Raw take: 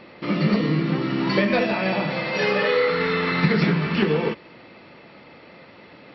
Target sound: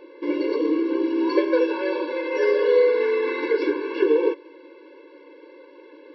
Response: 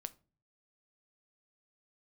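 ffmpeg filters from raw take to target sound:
-af "tiltshelf=frequency=1100:gain=6.5,afftfilt=real='re*eq(mod(floor(b*sr/1024/290),2),1)':imag='im*eq(mod(floor(b*sr/1024/290),2),1)':win_size=1024:overlap=0.75"

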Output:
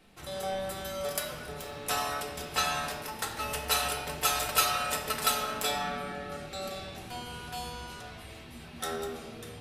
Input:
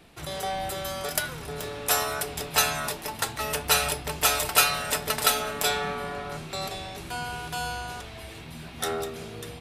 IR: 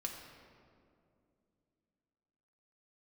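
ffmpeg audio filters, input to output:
-filter_complex "[0:a]asettb=1/sr,asplit=3[link_01][link_02][link_03];[link_01]atrim=end=1.904[link_04];[link_02]atrim=start=1.9:end=3.01,asetpts=PTS-STARTPTS,afade=type=in:duration=0.004:curve=qsin,afade=type=out:start_time=1.106:duration=0.004:curve=qsin,acrossover=split=7400[link_05][link_06];[link_06]acompressor=threshold=-34dB:ratio=4:attack=1:release=60[link_07];[link_05][link_07]amix=inputs=2:normalize=0[link_08];[link_03]atrim=start=3.006[link_09];[link_04][link_08]acrossfade=duration=0.004:curve1=hsin:curve2=qsin[link_10];[link_10][link_09]acrossfade=duration=0.004:curve1=qsin:curve2=hsin,asettb=1/sr,asplit=3[link_11][link_12][link_13];[link_11]atrim=end=6.014[link_14];[link_12]atrim=start=6.01:end=6.87,asetpts=PTS-STARTPTS,afade=type=in:duration=0.004:curve=qsin,afade=type=out:start_time=0.856:duration=0.004:curve=qsin,asuperstop=centerf=1000:order=4:qfactor=5.4[link_15];[link_13]atrim=start=6.866[link_16];[link_14][link_15]acrossfade=duration=0.004:curve1=hsin:curve2=qsin[link_17];[link_17][link_16]acrossfade=duration=0.004:curve1=qsin:curve2=hsin[link_18];[1:a]atrim=start_sample=2205,afade=type=out:start_time=0.42:duration=0.01,atrim=end_sample=18963,asetrate=48510,aresample=44100[link_19];[link_18][link_19]afir=irnorm=-1:irlink=0,volume=-3dB"

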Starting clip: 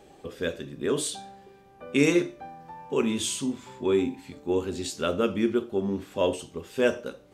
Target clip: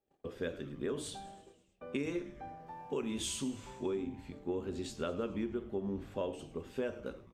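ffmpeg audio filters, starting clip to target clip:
ffmpeg -i in.wav -filter_complex "[0:a]agate=range=-30dB:threshold=-49dB:ratio=16:detection=peak,asetnsamples=nb_out_samples=441:pad=0,asendcmd='2.67 highshelf g -3;3.86 highshelf g -10.5',highshelf=frequency=3100:gain=-9,acompressor=threshold=-28dB:ratio=12,asplit=7[link_01][link_02][link_03][link_04][link_05][link_06][link_07];[link_02]adelay=105,afreqshift=-150,volume=-17dB[link_08];[link_03]adelay=210,afreqshift=-300,volume=-21dB[link_09];[link_04]adelay=315,afreqshift=-450,volume=-25dB[link_10];[link_05]adelay=420,afreqshift=-600,volume=-29dB[link_11];[link_06]adelay=525,afreqshift=-750,volume=-33.1dB[link_12];[link_07]adelay=630,afreqshift=-900,volume=-37.1dB[link_13];[link_01][link_08][link_09][link_10][link_11][link_12][link_13]amix=inputs=7:normalize=0,volume=-4.5dB" out.wav

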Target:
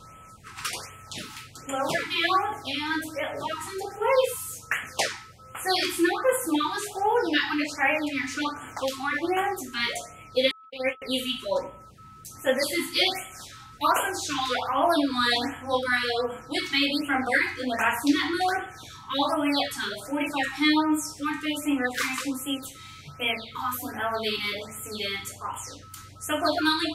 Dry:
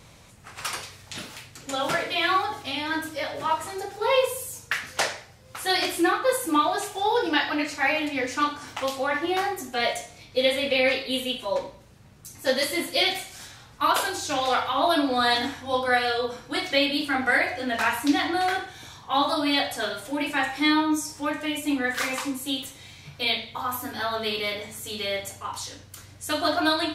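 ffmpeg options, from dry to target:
ffmpeg -i in.wav -filter_complex "[0:a]asettb=1/sr,asplit=3[link_01][link_02][link_03];[link_01]atrim=end=10.514[link_04];[link_02]atrim=start=10.51:end=11.02,asetpts=PTS-STARTPTS,afade=type=in:duration=0.004:curve=qsin,afade=type=out:start_time=0.506:duration=0.004:curve=qsin,agate=range=-58dB:threshold=-19dB:ratio=16:detection=peak[link_05];[link_03]atrim=start=11.016[link_06];[link_04][link_05]acrossfade=duration=0.004:curve1=hsin:curve2=qsin[link_07];[link_07][link_06]acrossfade=duration=0.004:curve1=qsin:curve2=hsin,aeval=exprs='val(0)+0.00447*sin(2*PI*1300*n/s)':channel_layout=same,afftfilt=real='re*(1-between(b*sr/1024,530*pow(4900/530,0.5+0.5*sin(2*PI*1.3*pts/sr))/1.41,530*pow(4900/530,0.5+0.5*sin(2*PI*1.3*pts/sr))*1.41))':imag='im*(1-between(b*sr/1024,530*pow(4900/530,0.5+0.5*sin(2*PI*1.3*pts/sr))/1.41,530*pow(4900/530,0.5+0.5*sin(2*PI*1.3*pts/sr))*1.41))':win_size=1024:overlap=0.75" out.wav

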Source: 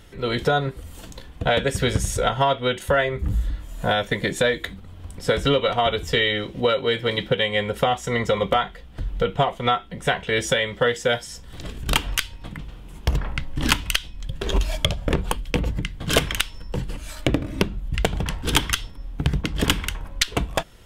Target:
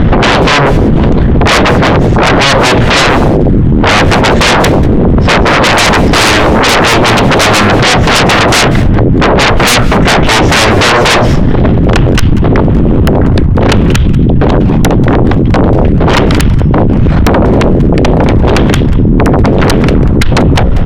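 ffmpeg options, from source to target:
ffmpeg -i in.wav -filter_complex "[0:a]lowpass=8500,aemphasis=mode=reproduction:type=riaa,bandreject=frequency=60:width_type=h:width=6,bandreject=frequency=120:width_type=h:width=6,bandreject=frequency=180:width_type=h:width=6,bandreject=frequency=240:width_type=h:width=6,bandreject=frequency=300:width_type=h:width=6,bandreject=frequency=360:width_type=h:width=6,bandreject=frequency=420:width_type=h:width=6,bandreject=frequency=480:width_type=h:width=6,bandreject=frequency=540:width_type=h:width=6,asettb=1/sr,asplit=3[link_01][link_02][link_03];[link_01]atrim=end=7.834[link_04];[link_02]atrim=start=7.83:end=9.99,asetpts=PTS-STARTPTS,afade=type=in:duration=0.004:curve=qsin,afade=type=out:start_time=2.156:duration=0.004:curve=qsin,adynamicequalizer=threshold=0.0251:dfrequency=1500:dqfactor=0.83:tfrequency=1500:tqfactor=0.83:attack=5:release=100:ratio=0.375:range=2.5:mode=boostabove:tftype=bell[link_05];[link_03]atrim=start=9.986[link_06];[link_04][link_05]acrossfade=duration=0.004:curve1=hsin:curve2=qsin[link_07];[link_07][link_06]acrossfade=duration=0.004:curve1=qsin:curve2=hsin,acompressor=threshold=-27dB:ratio=6,asoftclip=type=tanh:threshold=-25dB,adynamicsmooth=sensitivity=2:basefreq=2700,aeval=exprs='0.0562*sin(PI/2*5.01*val(0)/0.0562)':channel_layout=same,asplit=2[link_08][link_09];[link_09]adelay=190,highpass=300,lowpass=3400,asoftclip=type=hard:threshold=-34.5dB,volume=-10dB[link_10];[link_08][link_10]amix=inputs=2:normalize=0,alimiter=level_in=32dB:limit=-1dB:release=50:level=0:latency=1,volume=-1dB" out.wav

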